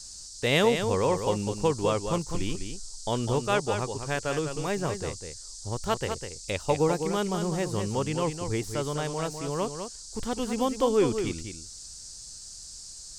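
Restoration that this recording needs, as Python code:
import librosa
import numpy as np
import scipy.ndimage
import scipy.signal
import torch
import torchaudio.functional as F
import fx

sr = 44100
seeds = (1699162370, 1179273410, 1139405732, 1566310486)

y = fx.noise_reduce(x, sr, print_start_s=12.12, print_end_s=12.62, reduce_db=30.0)
y = fx.fix_echo_inverse(y, sr, delay_ms=202, level_db=-7.5)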